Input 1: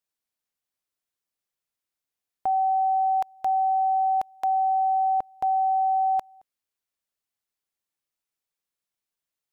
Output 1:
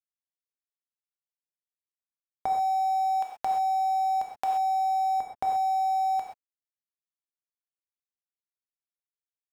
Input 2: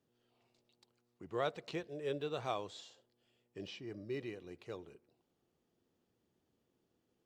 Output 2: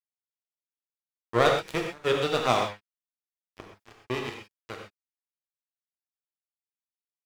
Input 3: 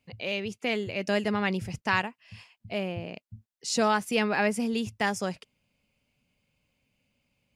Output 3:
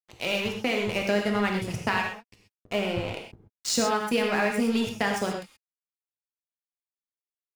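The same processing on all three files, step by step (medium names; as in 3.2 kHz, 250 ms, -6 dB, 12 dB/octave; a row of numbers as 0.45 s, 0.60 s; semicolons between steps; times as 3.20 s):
crossover distortion -39 dBFS; compression 6:1, threshold -31 dBFS; gated-style reverb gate 150 ms flat, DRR 1 dB; normalise loudness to -27 LUFS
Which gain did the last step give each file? +3.0 dB, +17.5 dB, +7.0 dB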